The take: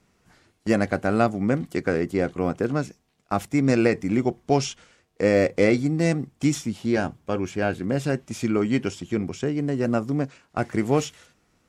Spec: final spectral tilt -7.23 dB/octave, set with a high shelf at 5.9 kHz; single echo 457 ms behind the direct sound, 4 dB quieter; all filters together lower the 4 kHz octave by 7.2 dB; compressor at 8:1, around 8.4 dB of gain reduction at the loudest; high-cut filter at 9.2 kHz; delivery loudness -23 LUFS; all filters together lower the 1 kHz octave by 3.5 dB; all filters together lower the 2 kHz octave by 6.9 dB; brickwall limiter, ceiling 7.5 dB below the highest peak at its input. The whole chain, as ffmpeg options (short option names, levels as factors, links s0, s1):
-af "lowpass=9200,equalizer=f=1000:t=o:g=-4,equalizer=f=2000:t=o:g=-5.5,equalizer=f=4000:t=o:g=-5,highshelf=f=5900:g=-7,acompressor=threshold=0.0631:ratio=8,alimiter=limit=0.0794:level=0:latency=1,aecho=1:1:457:0.631,volume=2.82"